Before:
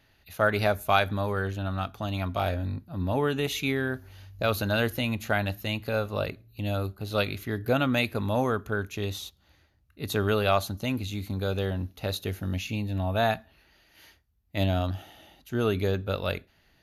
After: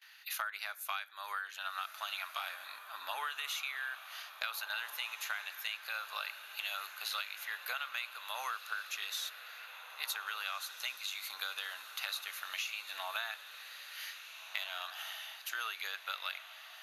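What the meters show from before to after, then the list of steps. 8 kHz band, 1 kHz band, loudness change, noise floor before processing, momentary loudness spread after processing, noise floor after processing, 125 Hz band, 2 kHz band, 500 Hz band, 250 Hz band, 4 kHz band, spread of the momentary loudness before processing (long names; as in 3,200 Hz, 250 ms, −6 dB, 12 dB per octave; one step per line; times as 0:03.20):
−1.0 dB, −10.0 dB, −11.0 dB, −65 dBFS, 7 LU, −52 dBFS, below −40 dB, −5.5 dB, −27.5 dB, below −40 dB, −3.0 dB, 9 LU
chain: high-pass filter 1,200 Hz 24 dB per octave
noise gate with hold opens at −58 dBFS
downward compressor 16 to 1, threshold −45 dBFS, peak gain reduction 24.5 dB
feedback delay with all-pass diffusion 1,753 ms, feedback 50%, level −10 dB
level +9.5 dB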